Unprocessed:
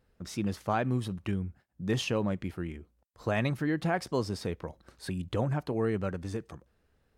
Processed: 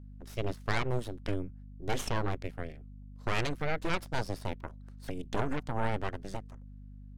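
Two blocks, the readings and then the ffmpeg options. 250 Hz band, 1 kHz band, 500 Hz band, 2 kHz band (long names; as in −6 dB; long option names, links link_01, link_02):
−7.0 dB, 0.0 dB, −4.0 dB, +0.5 dB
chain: -af "aeval=exprs='0.168*(cos(1*acos(clip(val(0)/0.168,-1,1)))-cos(1*PI/2))+0.0668*(cos(3*acos(clip(val(0)/0.168,-1,1)))-cos(3*PI/2))+0.0335*(cos(6*acos(clip(val(0)/0.168,-1,1)))-cos(6*PI/2))':channel_layout=same,aeval=exprs='val(0)+0.00398*(sin(2*PI*50*n/s)+sin(2*PI*2*50*n/s)/2+sin(2*PI*3*50*n/s)/3+sin(2*PI*4*50*n/s)/4+sin(2*PI*5*50*n/s)/5)':channel_layout=same,volume=1.5dB"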